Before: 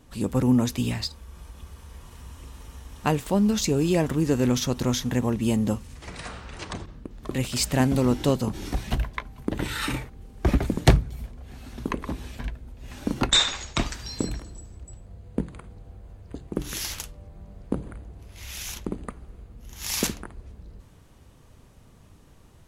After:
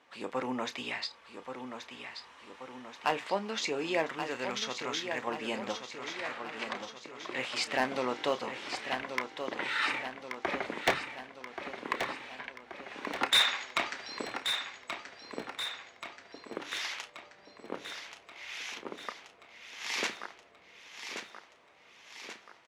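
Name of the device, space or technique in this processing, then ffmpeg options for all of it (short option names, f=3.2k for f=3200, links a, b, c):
megaphone: -filter_complex "[0:a]highpass=670,lowpass=3.4k,equalizer=f=2.1k:t=o:w=0.44:g=4.5,asoftclip=type=hard:threshold=-19dB,asplit=2[a][b];[b]adelay=31,volume=-13dB[c];[a][c]amix=inputs=2:normalize=0,asettb=1/sr,asplit=3[d][e][f];[d]atrim=end=4.094[g];[e]atrim=start=4.09:end=5.27,asetpts=PTS-STARTPTS,afade=t=in:d=0.004:c=qsin,afade=t=out:st=1.176:d=0.004:c=qsin,equalizer=f=440:t=o:w=2.5:g=-6[h];[f]atrim=start=5.266[i];[g][h]acrossfade=d=0.004:c1=hsin:c2=qsin[j];[j][i]acrossfade=d=0.004:c1=qsin:c2=hsin,aecho=1:1:1130|2260|3390|4520|5650|6780|7910:0.398|0.227|0.129|0.0737|0.042|0.024|0.0137"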